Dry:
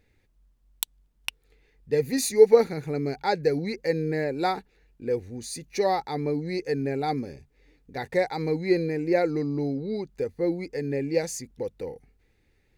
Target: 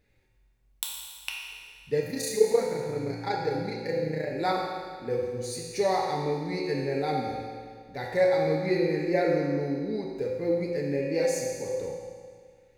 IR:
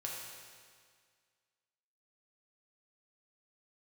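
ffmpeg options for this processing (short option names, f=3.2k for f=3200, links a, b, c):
-filter_complex "[0:a]asettb=1/sr,asplit=3[a][b][c];[a]atrim=end=2.004[d];[b]atrim=start=2:end=4.31,asetpts=PTS-STARTPTS,afade=t=in:d=0.004:c=qsin,afade=t=out:st=2.306:d=0.004:c=qsin,tremolo=f=29:d=0.824[e];[c]atrim=start=4.306[f];[d][e]acrossfade=d=0.004:c1=hsin:c2=qsin[g];[g][f]acrossfade=d=0.004:c1=qsin:c2=hsin[h];[1:a]atrim=start_sample=2205[i];[h][i]afir=irnorm=-1:irlink=0"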